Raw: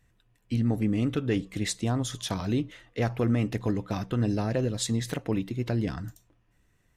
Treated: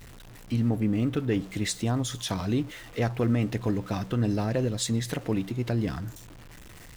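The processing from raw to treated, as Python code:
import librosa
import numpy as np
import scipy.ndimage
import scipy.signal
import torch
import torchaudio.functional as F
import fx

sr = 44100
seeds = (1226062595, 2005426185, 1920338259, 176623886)

y = x + 0.5 * 10.0 ** (-41.5 / 20.0) * np.sign(x)
y = fx.peak_eq(y, sr, hz=6200.0, db=-4.0, octaves=2.3, at=(0.69, 1.41))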